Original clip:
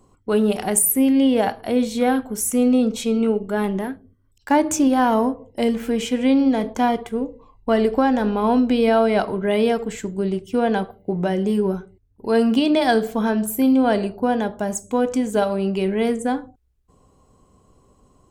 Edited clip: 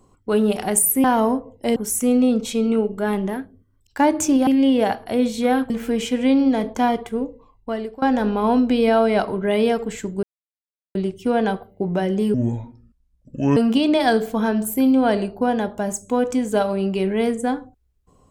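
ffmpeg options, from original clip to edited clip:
-filter_complex "[0:a]asplit=9[s0][s1][s2][s3][s4][s5][s6][s7][s8];[s0]atrim=end=1.042[s9];[s1]atrim=start=4.978:end=5.702[s10];[s2]atrim=start=2.268:end=4.982[s11];[s3]atrim=start=1.038:end=2.272[s12];[s4]atrim=start=5.698:end=8.02,asetpts=PTS-STARTPTS,afade=t=out:st=1.512:d=0.81:silence=0.0891251[s13];[s5]atrim=start=8.02:end=10.23,asetpts=PTS-STARTPTS,afade=t=in:d=0.004:c=hsin:silence=0.0891251,afade=t=out:st=2.206:d=0.004:c=hsin,apad=pad_dur=0.72[s14];[s6]atrim=start=10.23:end=11.624,asetpts=PTS-STARTPTS,afade=t=in:d=0.004:c=hsin[s15];[s7]atrim=start=11.62:end=12.38,asetpts=PTS-STARTPTS,asetrate=27342,aresample=44100,atrim=end_sample=54058,asetpts=PTS-STARTPTS[s16];[s8]atrim=start=12.376[s17];[s9][s10]acrossfade=d=0.004:c1=hsin:c2=hsin[s18];[s18][s11]acrossfade=d=0.004:c1=hsin:c2=hsin[s19];[s19][s12]acrossfade=d=0.004:c1=hsin:c2=hsin[s20];[s13][s14][s15]concat=n=3:v=0:a=1[s21];[s20][s21]acrossfade=d=0.004:c1=hsin:c2=hsin[s22];[s22][s16]acrossfade=d=0.004:c1=hsin:c2=hsin[s23];[s23][s17]acrossfade=d=0.004:c1=hsin:c2=hsin"

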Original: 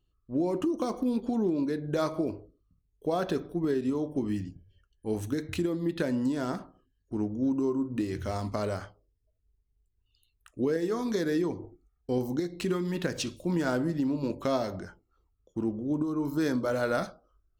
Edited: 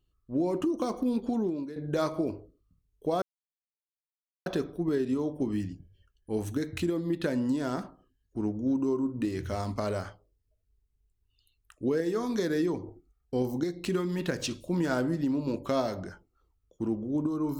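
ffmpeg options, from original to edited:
-filter_complex "[0:a]asplit=3[s0][s1][s2];[s0]atrim=end=1.76,asetpts=PTS-STARTPTS,afade=t=out:st=1.33:d=0.43:silence=0.211349[s3];[s1]atrim=start=1.76:end=3.22,asetpts=PTS-STARTPTS,afade=t=in:d=0.004:c=hsin:silence=0.211349,afade=t=out:st=1.456:d=0.004:c=hsin,apad=pad_dur=1.24[s4];[s2]atrim=start=3.22,asetpts=PTS-STARTPTS,afade=t=in:d=0.004:c=hsin[s5];[s3][s4][s5]concat=n=3:v=0:a=1"

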